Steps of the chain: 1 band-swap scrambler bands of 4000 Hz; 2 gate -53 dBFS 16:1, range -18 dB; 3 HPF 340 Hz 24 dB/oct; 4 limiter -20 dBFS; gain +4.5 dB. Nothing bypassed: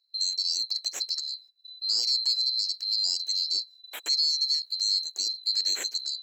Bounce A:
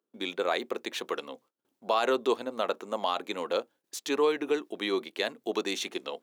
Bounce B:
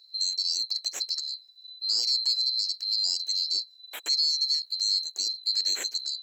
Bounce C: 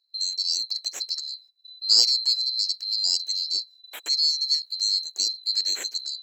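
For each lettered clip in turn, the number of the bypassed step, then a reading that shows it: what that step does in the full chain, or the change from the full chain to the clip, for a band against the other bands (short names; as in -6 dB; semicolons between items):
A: 1, crest factor change +2.5 dB; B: 2, momentary loudness spread change +1 LU; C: 4, crest factor change +8.5 dB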